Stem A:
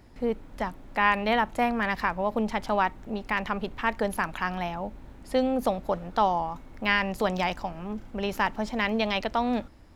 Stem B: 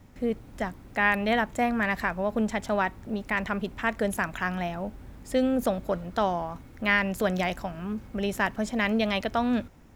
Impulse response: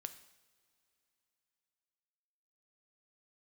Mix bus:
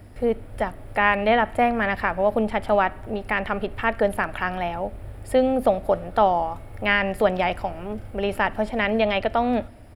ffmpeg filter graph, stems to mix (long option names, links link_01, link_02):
-filter_complex "[0:a]acrossover=split=3900[link_01][link_02];[link_02]acompressor=threshold=-56dB:ratio=4:attack=1:release=60[link_03];[link_01][link_03]amix=inputs=2:normalize=0,volume=1.5dB,asplit=3[link_04][link_05][link_06];[link_05]volume=-3dB[link_07];[1:a]acompressor=threshold=-39dB:ratio=2.5,adelay=2,volume=0dB[link_08];[link_06]apad=whole_len=439078[link_09];[link_08][link_09]sidechaincompress=threshold=-25dB:ratio=8:attack=16:release=390[link_10];[2:a]atrim=start_sample=2205[link_11];[link_07][link_11]afir=irnorm=-1:irlink=0[link_12];[link_04][link_10][link_12]amix=inputs=3:normalize=0,equalizer=frequency=100:width_type=o:width=0.33:gain=10,equalizer=frequency=160:width_type=o:width=0.33:gain=-6,equalizer=frequency=630:width_type=o:width=0.33:gain=6,equalizer=frequency=1000:width_type=o:width=0.33:gain=-6,equalizer=frequency=4000:width_type=o:width=0.33:gain=-4,equalizer=frequency=6300:width_type=o:width=0.33:gain=-12,equalizer=frequency=10000:width_type=o:width=0.33:gain=9"